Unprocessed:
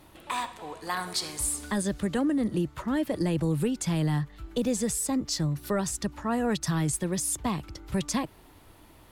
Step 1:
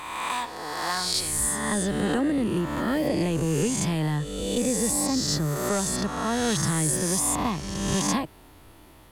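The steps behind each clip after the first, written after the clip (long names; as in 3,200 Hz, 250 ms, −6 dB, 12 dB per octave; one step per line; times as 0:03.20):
peak hold with a rise ahead of every peak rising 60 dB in 1.51 s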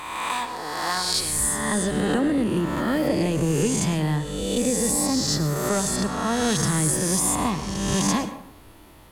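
dense smooth reverb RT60 0.63 s, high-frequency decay 0.55×, pre-delay 90 ms, DRR 11 dB
level +2 dB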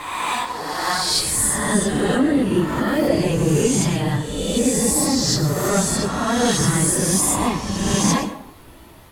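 random phases in long frames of 50 ms
level +4 dB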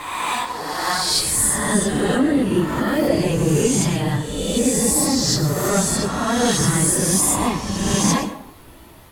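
high-shelf EQ 11,000 Hz +3.5 dB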